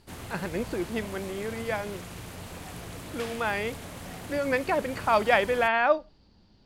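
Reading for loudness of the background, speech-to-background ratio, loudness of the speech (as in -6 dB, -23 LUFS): -40.5 LUFS, 12.5 dB, -28.0 LUFS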